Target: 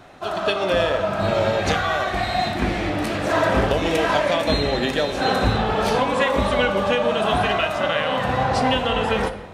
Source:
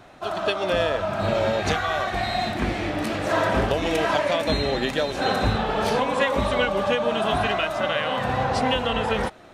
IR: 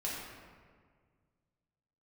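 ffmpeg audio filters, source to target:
-filter_complex "[0:a]asplit=2[s0][s1];[1:a]atrim=start_sample=2205,asetrate=79380,aresample=44100,adelay=11[s2];[s1][s2]afir=irnorm=-1:irlink=0,volume=0.473[s3];[s0][s3]amix=inputs=2:normalize=0,volume=1.26"

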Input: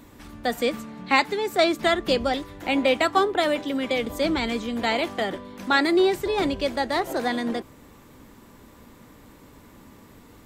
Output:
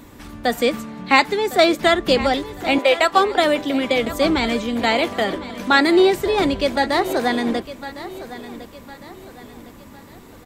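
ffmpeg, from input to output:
-filter_complex "[0:a]asettb=1/sr,asplit=3[s0][s1][s2];[s0]atrim=end=2.784[s3];[s1]atrim=start=2.78:end=3.38,asetpts=PTS-STARTPTS,afade=t=in:d=0.004:c=qsin,afade=t=out:st=0.596:d=0.004:c=qsin,highpass=f=390:w=0.5412,highpass=f=390:w=1.3066[s4];[s2]atrim=start=3.376[s5];[s3][s4]acrossfade=d=0.004:c1=hsin:c2=qsin[s6];[s6][s5]acrossfade=d=0.004:c1=qsin:c2=hsin,aecho=1:1:1057|2114|3171|4228:0.178|0.0711|0.0285|0.0114,volume=1.88"

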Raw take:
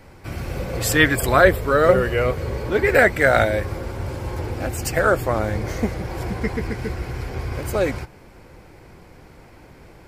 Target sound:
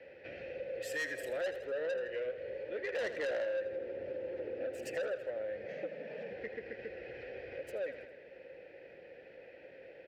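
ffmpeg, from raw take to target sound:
-filter_complex "[0:a]asettb=1/sr,asplit=3[s0][s1][s2];[s0]atrim=end=3.014[s3];[s1]atrim=start=3.01:end=5.08,asetpts=PTS-STARTPTS,afade=t=in:d=0.004:c=qsin,afade=t=out:st=2.066:d=0.004:c=qsin,equalizer=f=280:t=o:w=2.4:g=9.5[s4];[s2]atrim=start=5.076[s5];[s3][s4]acrossfade=d=0.004:c1=hsin:c2=qsin[s6];[s6][s5]acrossfade=d=0.004:c1=qsin:c2=hsin,asplit=3[s7][s8][s9];[s7]afade=t=out:st=5.67:d=0.02[s10];[s8]afreqshift=98,afade=t=in:st=5.67:d=0.02,afade=t=out:st=6.29:d=0.02[s11];[s9]afade=t=in:st=6.29:d=0.02[s12];[s10][s11][s12]amix=inputs=3:normalize=0,acrossover=split=250|810|4400[s13][s14][s15][s16];[s16]acrusher=bits=4:mix=0:aa=0.5[s17];[s13][s14][s15][s17]amix=inputs=4:normalize=0,asplit=3[s18][s19][s20];[s18]bandpass=f=530:t=q:w=8,volume=1[s21];[s19]bandpass=f=1840:t=q:w=8,volume=0.501[s22];[s20]bandpass=f=2480:t=q:w=8,volume=0.355[s23];[s21][s22][s23]amix=inputs=3:normalize=0,crystalizer=i=2.5:c=0,asoftclip=type=tanh:threshold=0.075,aecho=1:1:81|162|243|324|405:0.237|0.121|0.0617|0.0315|0.016,acompressor=threshold=0.00251:ratio=2,volume=1.68"

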